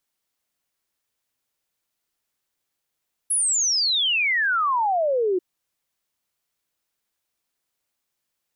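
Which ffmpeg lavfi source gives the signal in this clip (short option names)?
-f lavfi -i "aevalsrc='0.119*clip(min(t,2.09-t)/0.01,0,1)*sin(2*PI*11000*2.09/log(350/11000)*(exp(log(350/11000)*t/2.09)-1))':d=2.09:s=44100"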